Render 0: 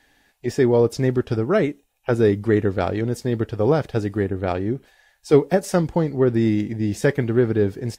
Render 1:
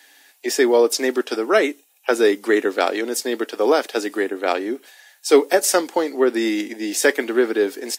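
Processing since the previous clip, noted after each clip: steep high-pass 250 Hz 48 dB/oct; tilt +3 dB/oct; gain +5.5 dB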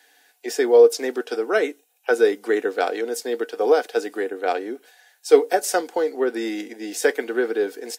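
small resonant body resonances 470/730/1500 Hz, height 12 dB, ringing for 70 ms; gain -7 dB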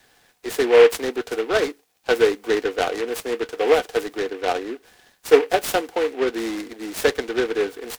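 noise-modulated delay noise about 1700 Hz, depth 0.072 ms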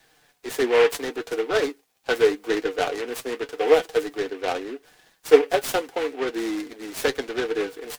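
flange 0.78 Hz, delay 6.1 ms, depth 1.7 ms, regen +42%; gain +1.5 dB

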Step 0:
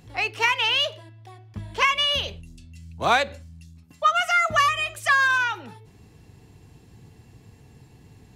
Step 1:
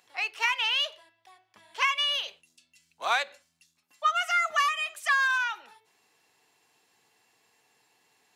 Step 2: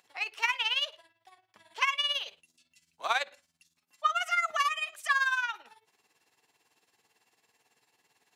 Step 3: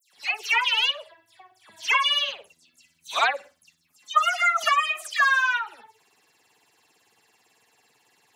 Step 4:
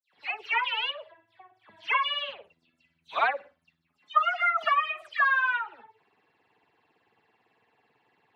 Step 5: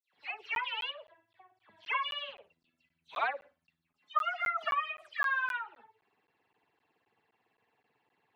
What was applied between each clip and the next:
HPF 840 Hz 12 dB/oct; gain -4.5 dB
tremolo 18 Hz, depth 68%
dispersion lows, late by 0.136 s, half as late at 2800 Hz; gain +7 dB
air absorption 460 m
crackling interface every 0.26 s, samples 512, zero, from 0.55; gain -7 dB

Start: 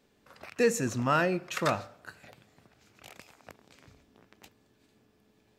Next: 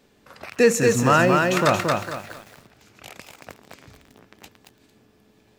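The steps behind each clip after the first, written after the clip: lo-fi delay 0.227 s, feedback 35%, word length 9-bit, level -3 dB; gain +8.5 dB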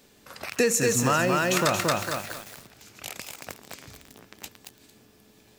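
high shelf 4100 Hz +11 dB; compressor 4:1, threshold -20 dBFS, peak gain reduction 8.5 dB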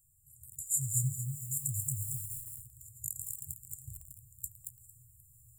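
FFT band-reject 150–7000 Hz; vocal rider within 4 dB 2 s

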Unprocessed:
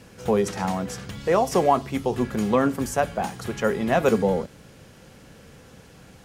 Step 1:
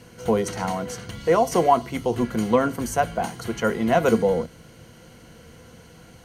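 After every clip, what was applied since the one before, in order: ripple EQ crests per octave 1.9, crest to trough 8 dB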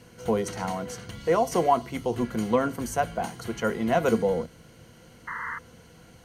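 painted sound noise, 5.27–5.59, 900–2100 Hz -30 dBFS; gain -4 dB

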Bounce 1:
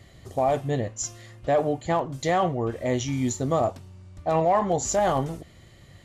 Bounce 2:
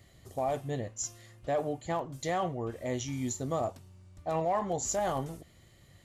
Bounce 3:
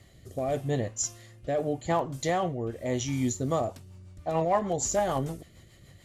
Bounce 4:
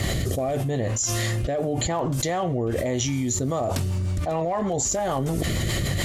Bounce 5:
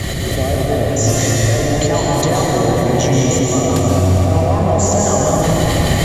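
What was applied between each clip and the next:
high shelf 8900 Hz +11 dB; gain -8.5 dB
rotary speaker horn 0.85 Hz, later 6.7 Hz, at 3.04; gain +6.5 dB
fast leveller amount 100%; gain -3.5 dB
reverb RT60 5.6 s, pre-delay 0.117 s, DRR -5 dB; gain +4 dB

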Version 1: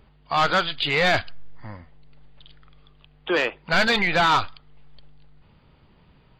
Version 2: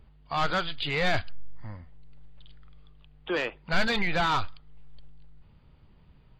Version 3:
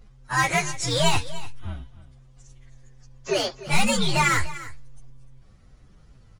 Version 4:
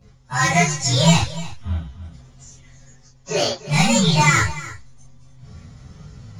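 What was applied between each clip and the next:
low shelf 140 Hz +10.5 dB; gain -7.5 dB
inharmonic rescaling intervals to 126%; echo 0.296 s -16.5 dB; gain +8.5 dB
reverse; upward compressor, threshold -34 dBFS; reverse; reverb, pre-delay 3 ms, DRR -10.5 dB; gain -4.5 dB

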